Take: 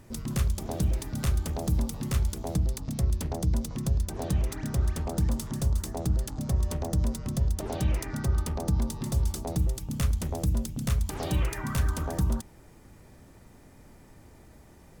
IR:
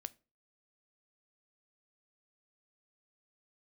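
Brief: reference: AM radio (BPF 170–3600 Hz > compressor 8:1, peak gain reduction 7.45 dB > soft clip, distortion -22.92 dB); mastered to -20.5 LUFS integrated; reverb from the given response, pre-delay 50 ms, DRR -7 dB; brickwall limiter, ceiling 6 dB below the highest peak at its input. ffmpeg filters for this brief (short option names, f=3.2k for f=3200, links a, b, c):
-filter_complex "[0:a]alimiter=limit=-23dB:level=0:latency=1,asplit=2[a][b];[1:a]atrim=start_sample=2205,adelay=50[c];[b][c]afir=irnorm=-1:irlink=0,volume=11dB[d];[a][d]amix=inputs=2:normalize=0,highpass=170,lowpass=3.6k,acompressor=threshold=-29dB:ratio=8,asoftclip=threshold=-23.5dB,volume=15dB"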